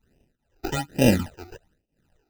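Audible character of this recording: aliases and images of a low sample rate 1100 Hz, jitter 0%; phasing stages 12, 1.2 Hz, lowest notch 170–1400 Hz; tremolo triangle 2 Hz, depth 95%

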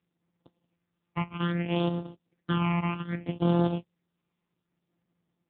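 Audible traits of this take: a buzz of ramps at a fixed pitch in blocks of 256 samples; phasing stages 8, 0.63 Hz, lowest notch 470–2100 Hz; AMR-NB

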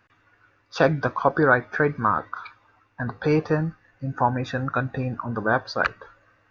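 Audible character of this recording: noise floor -64 dBFS; spectral tilt -5.5 dB/oct

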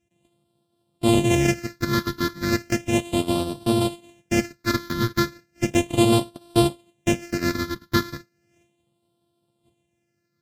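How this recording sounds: a buzz of ramps at a fixed pitch in blocks of 128 samples; phasing stages 6, 0.35 Hz, lowest notch 700–1900 Hz; Vorbis

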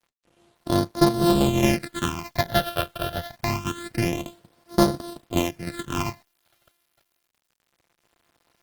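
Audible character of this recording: a buzz of ramps at a fixed pitch in blocks of 128 samples; phasing stages 8, 0.26 Hz, lowest notch 270–2500 Hz; a quantiser's noise floor 10-bit, dither none; Opus

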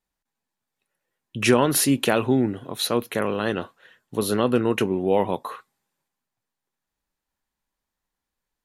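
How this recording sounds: noise floor -85 dBFS; spectral tilt -4.5 dB/oct

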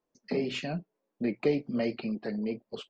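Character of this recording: noise floor -85 dBFS; spectral tilt -5.5 dB/oct

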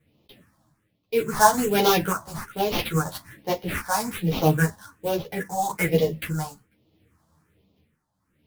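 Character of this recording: aliases and images of a low sample rate 7400 Hz, jitter 20%; phasing stages 4, 1.2 Hz, lowest notch 390–1600 Hz; tremolo triangle 0.71 Hz, depth 80%; a shimmering, thickened sound

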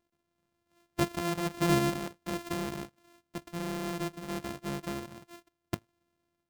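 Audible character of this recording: a buzz of ramps at a fixed pitch in blocks of 128 samples; random-step tremolo 2.8 Hz

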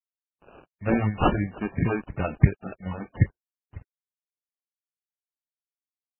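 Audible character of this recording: a quantiser's noise floor 8-bit, dither none; phasing stages 4, 2.9 Hz, lowest notch 100–1400 Hz; aliases and images of a low sample rate 2000 Hz, jitter 0%; MP3

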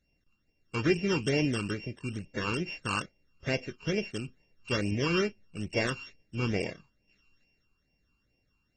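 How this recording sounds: a buzz of ramps at a fixed pitch in blocks of 16 samples; phasing stages 12, 2.3 Hz, lowest notch 600–1300 Hz; AAC

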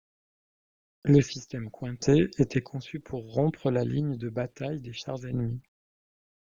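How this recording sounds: random-step tremolo 1.5 Hz, depth 85%; phasing stages 4, 3 Hz, lowest notch 720–4100 Hz; a quantiser's noise floor 12-bit, dither none

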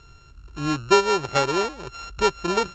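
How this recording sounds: a buzz of ramps at a fixed pitch in blocks of 32 samples; A-law

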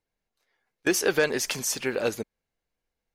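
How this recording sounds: noise floor -86 dBFS; spectral tilt -3.5 dB/oct

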